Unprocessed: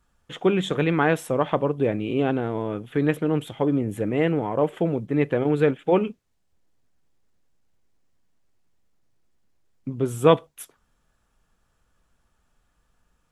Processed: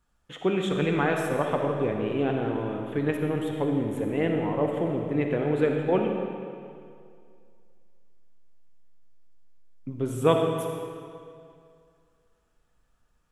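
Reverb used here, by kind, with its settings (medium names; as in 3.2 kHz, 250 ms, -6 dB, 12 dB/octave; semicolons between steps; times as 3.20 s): algorithmic reverb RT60 2.3 s, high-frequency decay 0.85×, pre-delay 15 ms, DRR 2 dB; trim -5 dB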